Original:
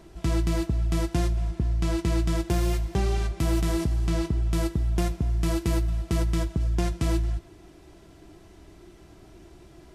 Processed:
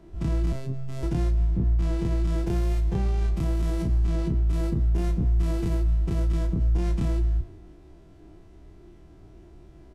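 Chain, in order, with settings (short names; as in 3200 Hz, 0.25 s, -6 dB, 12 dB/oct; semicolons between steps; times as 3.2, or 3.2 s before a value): spectral dilation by 60 ms; tilt -2 dB/oct; limiter -16 dBFS, peak gain reduction 9.5 dB; 0.52–1.03 robotiser 133 Hz; doubler 32 ms -11.5 dB; three-band expander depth 40%; gain -2.5 dB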